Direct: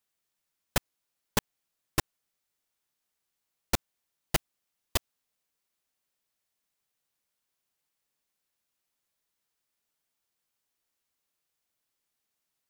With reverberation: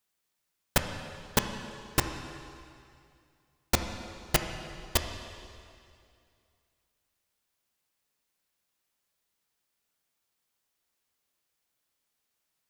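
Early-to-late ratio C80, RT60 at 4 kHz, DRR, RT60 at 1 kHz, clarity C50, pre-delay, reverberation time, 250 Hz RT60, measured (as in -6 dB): 8.0 dB, 2.2 s, 5.5 dB, 2.3 s, 7.0 dB, 6 ms, 2.3 s, 2.4 s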